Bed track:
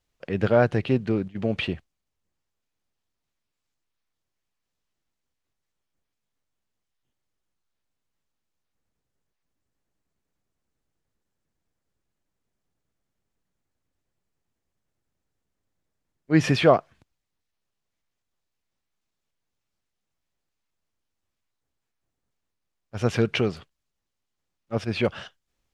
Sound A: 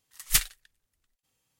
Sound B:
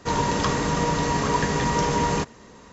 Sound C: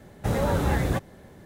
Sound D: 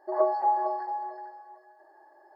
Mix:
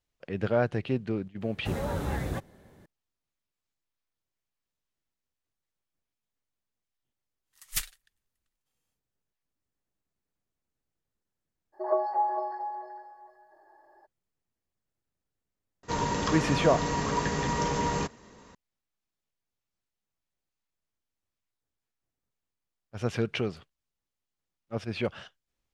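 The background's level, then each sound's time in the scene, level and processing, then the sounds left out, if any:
bed track -6.5 dB
1.41 s: add C -7.5 dB
7.42 s: add A -8.5 dB, fades 0.10 s
11.72 s: add D -2.5 dB, fades 0.02 s
15.83 s: add B -6 dB

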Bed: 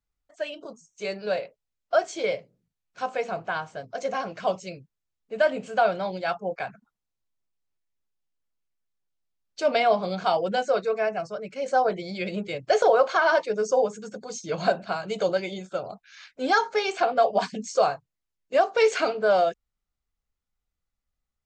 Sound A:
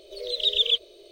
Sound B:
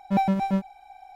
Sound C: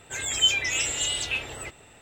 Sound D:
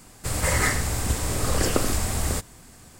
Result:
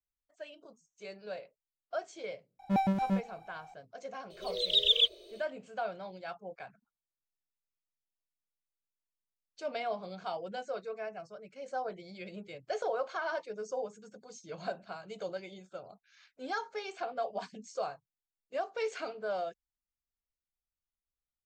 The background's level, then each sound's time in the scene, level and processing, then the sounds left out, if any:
bed -14.5 dB
2.59 s: add B -6 dB
4.30 s: add A -3 dB
not used: C, D

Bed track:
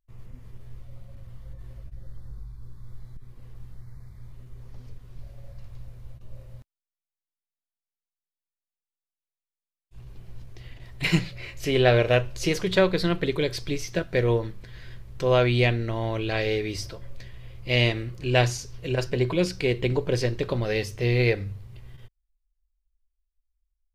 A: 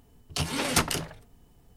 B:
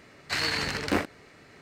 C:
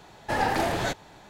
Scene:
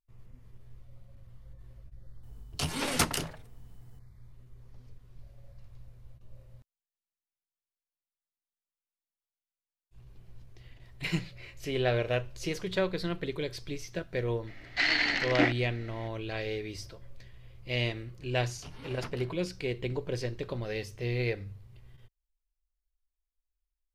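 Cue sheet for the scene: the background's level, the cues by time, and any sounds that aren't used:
bed track -9 dB
2.23 s: add A -3 dB
14.47 s: add B -2.5 dB + cabinet simulation 280–5700 Hz, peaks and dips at 290 Hz +9 dB, 470 Hz -9 dB, 700 Hz +6 dB, 1.1 kHz -7 dB, 2 kHz +10 dB, 3.2 kHz +6 dB
18.26 s: add A -17 dB + boxcar filter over 6 samples
not used: C

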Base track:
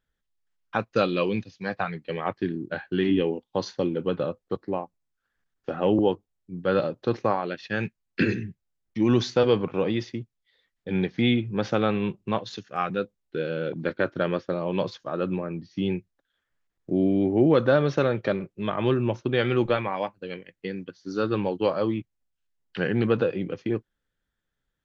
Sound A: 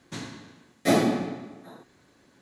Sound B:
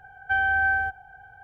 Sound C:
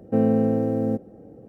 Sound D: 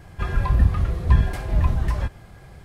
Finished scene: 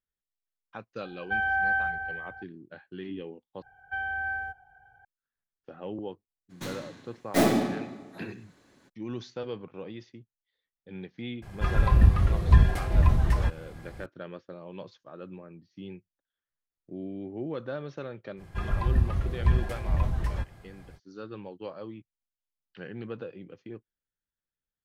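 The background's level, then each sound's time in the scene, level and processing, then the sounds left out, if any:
base track -15.5 dB
1.01 s: add B -4.5 dB + echo whose repeats swap between lows and highs 198 ms, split 950 Hz, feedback 51%, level -5 dB
3.62 s: replace with B -9.5 dB
6.49 s: add A -1 dB, fades 0.02 s + tracing distortion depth 0.23 ms
11.42 s: add D -1 dB
18.36 s: add D -6.5 dB, fades 0.05 s
not used: C

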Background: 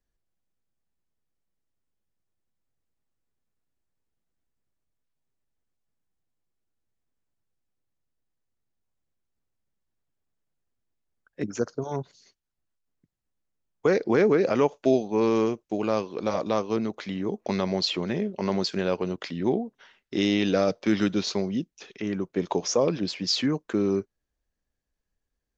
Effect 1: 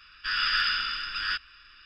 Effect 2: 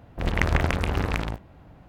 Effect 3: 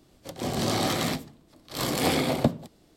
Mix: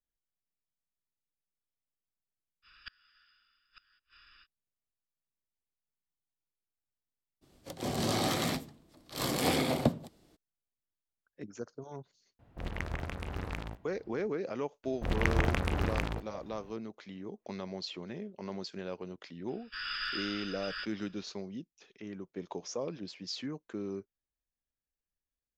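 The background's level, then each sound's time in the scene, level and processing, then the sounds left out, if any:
background -14 dB
2.62 s: add 1 -7 dB, fades 0.05 s + inverted gate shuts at -24 dBFS, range -35 dB
7.41 s: add 3 -4.5 dB, fades 0.02 s
12.39 s: add 2 -13.5 dB + gain riding
14.84 s: add 2 -6 dB
19.48 s: add 1 -11 dB

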